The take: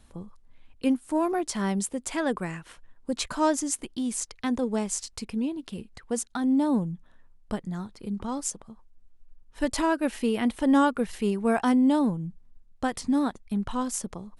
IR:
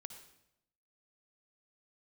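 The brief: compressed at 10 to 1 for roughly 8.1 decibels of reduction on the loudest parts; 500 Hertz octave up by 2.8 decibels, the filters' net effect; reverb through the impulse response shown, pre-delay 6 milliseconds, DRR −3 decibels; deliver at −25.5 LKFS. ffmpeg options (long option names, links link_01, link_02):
-filter_complex "[0:a]equalizer=frequency=500:width_type=o:gain=3.5,acompressor=threshold=-25dB:ratio=10,asplit=2[link_01][link_02];[1:a]atrim=start_sample=2205,adelay=6[link_03];[link_02][link_03]afir=irnorm=-1:irlink=0,volume=8dB[link_04];[link_01][link_04]amix=inputs=2:normalize=0,volume=2dB"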